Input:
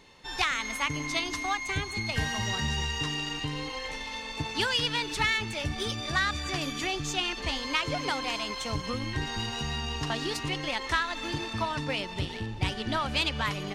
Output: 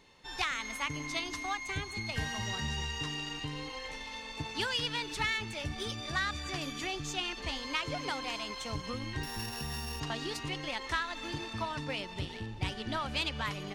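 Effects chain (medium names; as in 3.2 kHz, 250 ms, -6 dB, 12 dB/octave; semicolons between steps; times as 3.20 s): 9.23–10.00 s: sorted samples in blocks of 8 samples; trim -5.5 dB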